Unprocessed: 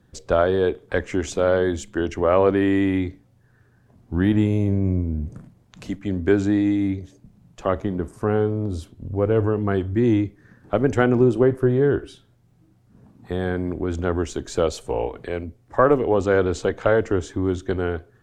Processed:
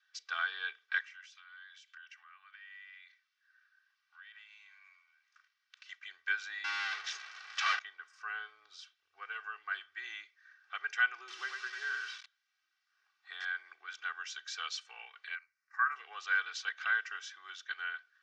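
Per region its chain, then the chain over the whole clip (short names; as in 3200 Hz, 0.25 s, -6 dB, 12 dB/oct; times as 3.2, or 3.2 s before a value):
1.02–5.89 HPF 990 Hz 24 dB/oct + compressor 8:1, threshold -46 dBFS + decimation joined by straight lines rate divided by 3×
6.64–7.79 power-law curve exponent 0.35 + tilt -2 dB/oct + doubler 15 ms -14 dB
11.18–13.45 bell 310 Hz +8 dB 0.29 oct + lo-fi delay 98 ms, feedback 35%, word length 6-bit, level -4 dB
15.35–15.96 bell 190 Hz -14.5 dB 1.8 oct + fixed phaser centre 1400 Hz, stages 4
whole clip: elliptic band-pass 1400–5600 Hz, stop band 70 dB; comb 2.6 ms, depth 97%; gain -5 dB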